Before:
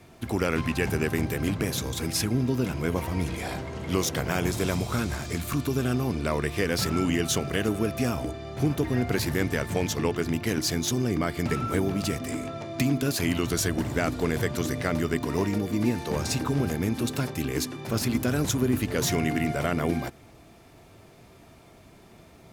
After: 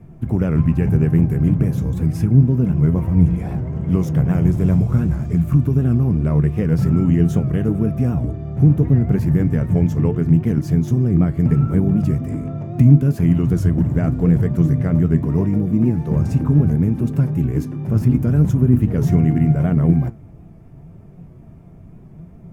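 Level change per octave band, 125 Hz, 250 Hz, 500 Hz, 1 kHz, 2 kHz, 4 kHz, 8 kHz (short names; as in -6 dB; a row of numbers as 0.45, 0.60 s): +15.0 dB, +10.0 dB, +2.0 dB, -3.0 dB, n/a, under -15 dB, under -10 dB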